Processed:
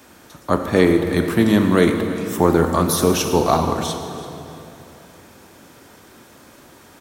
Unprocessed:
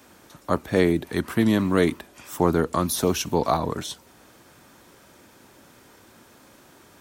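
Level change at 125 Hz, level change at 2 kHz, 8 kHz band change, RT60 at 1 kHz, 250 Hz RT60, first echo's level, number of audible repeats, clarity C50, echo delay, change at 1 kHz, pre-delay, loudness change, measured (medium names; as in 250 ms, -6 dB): +6.0 dB, +5.5 dB, +5.5 dB, 2.8 s, 3.4 s, -17.5 dB, 1, 5.5 dB, 333 ms, +6.0 dB, 10 ms, +5.5 dB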